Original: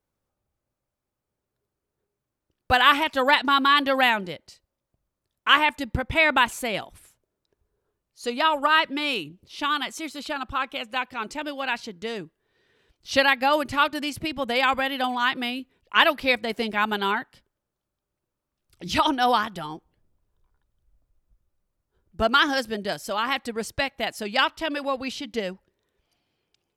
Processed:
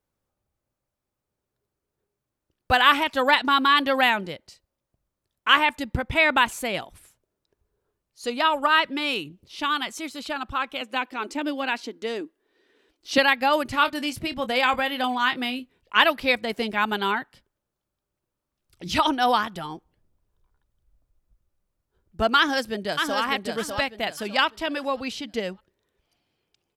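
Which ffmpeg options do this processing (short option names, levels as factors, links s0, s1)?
-filter_complex "[0:a]asettb=1/sr,asplit=3[s0][s1][s2];[s0]atrim=end=10.814[s3];[s1]atrim=start=10.81:end=13.18,asetpts=PTS-STARTPTS,afade=t=in:d=0.004:c=qsin,afade=t=out:st=2.366:d=0.004:c=qsin,lowshelf=f=200:t=q:w=3:g=-11.5[s4];[s2]atrim=start=13.176[s5];[s3][s4]acrossfade=d=0.004:c1=hsin:c2=qsin[s6];[s6][s5]acrossfade=d=0.004:c1=qsin:c2=hsin,asettb=1/sr,asplit=3[s7][s8][s9];[s7]atrim=end=13.734[s10];[s8]atrim=start=13.73:end=15.98,asetpts=PTS-STARTPTS,afade=t=in:d=0.004:c=qsin,afade=t=out:st=2.246:d=0.004:c=qsin,asplit=2[s11][s12];[s12]adelay=24,volume=0.266[s13];[s11][s13]amix=inputs=2:normalize=0,atrim=end_sample=99225[s14];[s9]atrim=start=15.976[s15];[s10][s14]acrossfade=d=0.004:c1=hsin:c2=qsin[s16];[s16][s15]acrossfade=d=0.004:c1=qsin:c2=hsin,asplit=2[s17][s18];[s18]afade=t=in:st=22.37:d=0.01,afade=t=out:st=23.2:d=0.01,aecho=0:1:600|1200|1800|2400:0.562341|0.168702|0.0506107|0.0151832[s19];[s17][s19]amix=inputs=2:normalize=0"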